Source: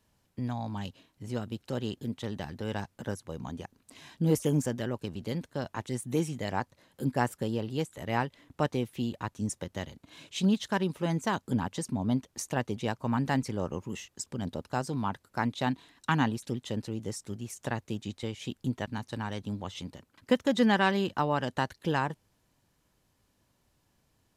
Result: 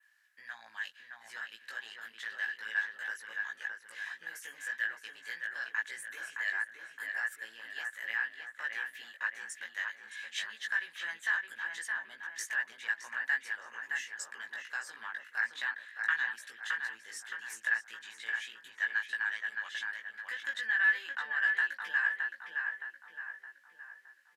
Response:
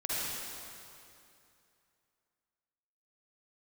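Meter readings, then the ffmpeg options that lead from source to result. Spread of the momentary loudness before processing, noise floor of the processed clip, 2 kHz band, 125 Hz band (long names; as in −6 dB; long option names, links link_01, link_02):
12 LU, −61 dBFS, +8.5 dB, below −40 dB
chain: -filter_complex "[0:a]adynamicequalizer=threshold=0.00141:dfrequency=5200:dqfactor=1.7:tfrequency=5200:tqfactor=1.7:attack=5:release=100:ratio=0.375:range=2.5:mode=cutabove:tftype=bell,alimiter=limit=-19.5dB:level=0:latency=1,acompressor=threshold=-31dB:ratio=6,highpass=frequency=1700:width_type=q:width=14,asplit=2[link_01][link_02];[link_02]adelay=18,volume=-2dB[link_03];[link_01][link_03]amix=inputs=2:normalize=0,asplit=2[link_04][link_05];[link_05]adelay=617,lowpass=frequency=2300:poles=1,volume=-3dB,asplit=2[link_06][link_07];[link_07]adelay=617,lowpass=frequency=2300:poles=1,volume=0.52,asplit=2[link_08][link_09];[link_09]adelay=617,lowpass=frequency=2300:poles=1,volume=0.52,asplit=2[link_10][link_11];[link_11]adelay=617,lowpass=frequency=2300:poles=1,volume=0.52,asplit=2[link_12][link_13];[link_13]adelay=617,lowpass=frequency=2300:poles=1,volume=0.52,asplit=2[link_14][link_15];[link_15]adelay=617,lowpass=frequency=2300:poles=1,volume=0.52,asplit=2[link_16][link_17];[link_17]adelay=617,lowpass=frequency=2300:poles=1,volume=0.52[link_18];[link_06][link_08][link_10][link_12][link_14][link_16][link_18]amix=inputs=7:normalize=0[link_19];[link_04][link_19]amix=inputs=2:normalize=0,volume=-5dB"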